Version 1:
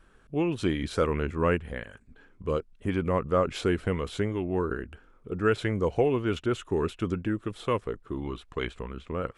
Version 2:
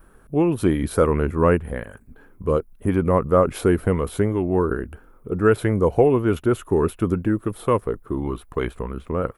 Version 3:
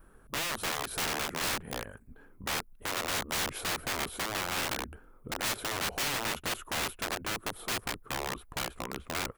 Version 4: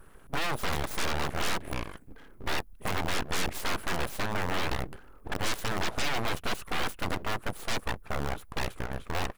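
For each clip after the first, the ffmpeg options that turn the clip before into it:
ffmpeg -i in.wav -af "firequalizer=gain_entry='entry(980,0);entry(1700,-5);entry(3000,-11);entry(7500,-6);entry(11000,13)':delay=0.05:min_phase=1,volume=8dB" out.wav
ffmpeg -i in.wav -af "aeval=exprs='(mod(9.44*val(0)+1,2)-1)/9.44':channel_layout=same,afftfilt=real='re*lt(hypot(re,im),0.178)':imag='im*lt(hypot(re,im),0.178)':win_size=1024:overlap=0.75,volume=-6dB" out.wav
ffmpeg -i in.wav -af "aeval=exprs='abs(val(0))':channel_layout=same,volume=5.5dB" out.wav

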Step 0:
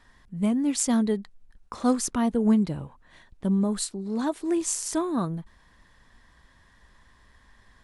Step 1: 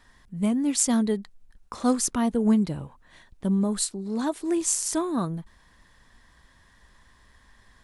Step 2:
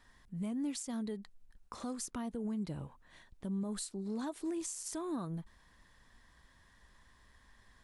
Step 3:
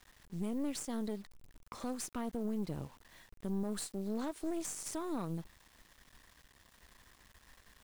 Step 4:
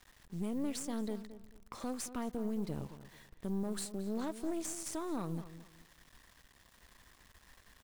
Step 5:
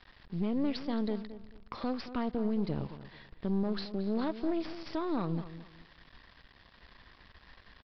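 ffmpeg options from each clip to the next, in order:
ffmpeg -i in.wav -af "highshelf=frequency=5000:gain=5" out.wav
ffmpeg -i in.wav -af "acompressor=threshold=-26dB:ratio=4,alimiter=limit=-24dB:level=0:latency=1:release=132,volume=-6.5dB" out.wav
ffmpeg -i in.wav -af "acrusher=bits=9:mix=0:aa=0.000001,aeval=exprs='(tanh(56.2*val(0)+0.75)-tanh(0.75))/56.2':channel_layout=same,volume=4dB" out.wav
ffmpeg -i in.wav -filter_complex "[0:a]asplit=2[link_01][link_02];[link_02]adelay=220,lowpass=frequency=2600:poles=1,volume=-13dB,asplit=2[link_03][link_04];[link_04]adelay=220,lowpass=frequency=2600:poles=1,volume=0.27,asplit=2[link_05][link_06];[link_06]adelay=220,lowpass=frequency=2600:poles=1,volume=0.27[link_07];[link_01][link_03][link_05][link_07]amix=inputs=4:normalize=0" out.wav
ffmpeg -i in.wav -af "aresample=11025,aresample=44100,volume=5.5dB" out.wav

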